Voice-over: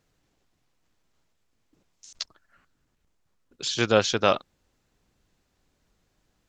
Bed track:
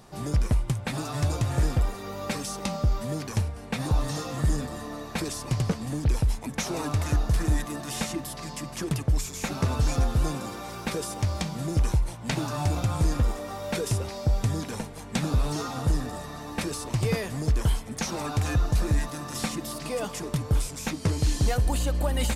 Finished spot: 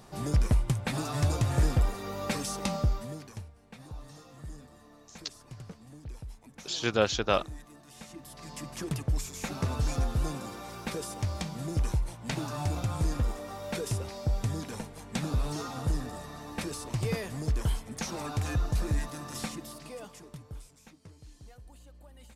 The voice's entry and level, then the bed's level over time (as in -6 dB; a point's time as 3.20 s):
3.05 s, -5.0 dB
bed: 2.79 s -1 dB
3.52 s -19 dB
7.95 s -19 dB
8.60 s -5 dB
19.35 s -5 dB
21.16 s -27.5 dB